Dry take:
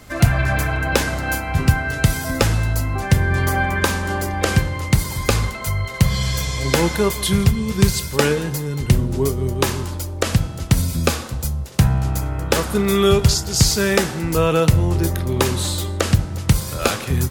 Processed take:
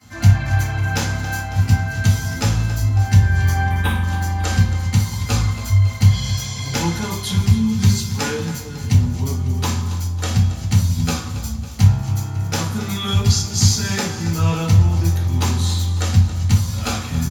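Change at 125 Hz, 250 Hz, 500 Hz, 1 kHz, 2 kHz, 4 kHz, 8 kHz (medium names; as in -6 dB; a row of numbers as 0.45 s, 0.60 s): +3.5 dB, -1.5 dB, -11.0 dB, -3.0 dB, -4.0 dB, -1.5 dB, -1.0 dB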